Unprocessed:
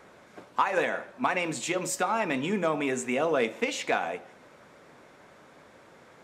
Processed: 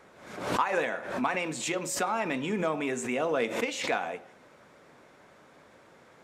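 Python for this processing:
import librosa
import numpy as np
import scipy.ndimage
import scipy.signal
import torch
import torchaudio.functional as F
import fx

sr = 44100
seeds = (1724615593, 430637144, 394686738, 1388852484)

y = fx.pre_swell(x, sr, db_per_s=71.0)
y = F.gain(torch.from_numpy(y), -2.5).numpy()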